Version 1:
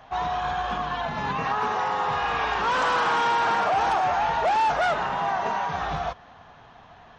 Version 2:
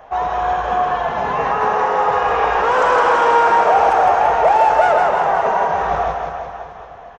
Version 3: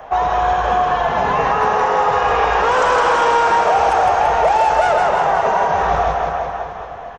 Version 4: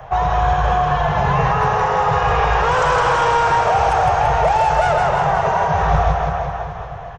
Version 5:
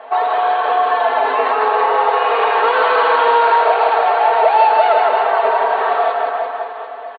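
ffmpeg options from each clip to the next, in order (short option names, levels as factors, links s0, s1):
-filter_complex "[0:a]equalizer=f=125:t=o:w=1:g=-6,equalizer=f=250:t=o:w=1:g=-5,equalizer=f=500:t=o:w=1:g=9,equalizer=f=4000:t=o:w=1:g=-10,asplit=2[s0][s1];[s1]aecho=0:1:160|336|529.6|742.6|976.8:0.631|0.398|0.251|0.158|0.1[s2];[s0][s2]amix=inputs=2:normalize=0,volume=1.78"
-filter_complex "[0:a]acrossover=split=140|3000[s0][s1][s2];[s1]acompressor=threshold=0.0891:ratio=2.5[s3];[s0][s3][s2]amix=inputs=3:normalize=0,volume=2"
-af "lowshelf=f=180:t=q:w=3:g=9,volume=0.891"
-af "afftfilt=real='re*between(b*sr/4096,240,4600)':imag='im*between(b*sr/4096,240,4600)':win_size=4096:overlap=0.75,aecho=1:1:4.5:0.72,volume=1.12"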